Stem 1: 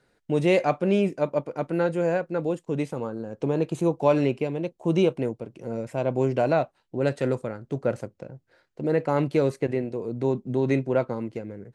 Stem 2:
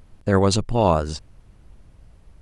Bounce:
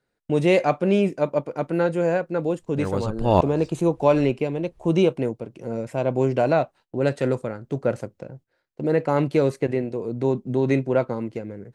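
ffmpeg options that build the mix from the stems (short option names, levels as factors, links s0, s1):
-filter_complex "[0:a]volume=1.33[s0];[1:a]deesser=0.8,aeval=exprs='val(0)*pow(10,-22*if(lt(mod(-1.1*n/s,1),2*abs(-1.1)/1000),1-mod(-1.1*n/s,1)/(2*abs(-1.1)/1000),(mod(-1.1*n/s,1)-2*abs(-1.1)/1000)/(1-2*abs(-1.1)/1000))/20)':c=same,adelay=2500,volume=1.26[s1];[s0][s1]amix=inputs=2:normalize=0,agate=range=0.224:threshold=0.00447:ratio=16:detection=peak"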